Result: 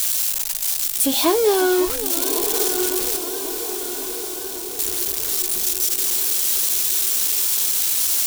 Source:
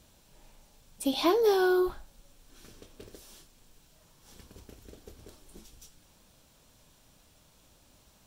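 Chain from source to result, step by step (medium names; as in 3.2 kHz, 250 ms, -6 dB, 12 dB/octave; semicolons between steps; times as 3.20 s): zero-crossing glitches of -20 dBFS; 3.16–4.79 s: level held to a coarse grid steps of 20 dB; on a send: echo that smears into a reverb 1136 ms, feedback 54%, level -8.5 dB; on the sum: modulated delay 551 ms, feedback 72%, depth 148 cents, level -13.5 dB; trim +6.5 dB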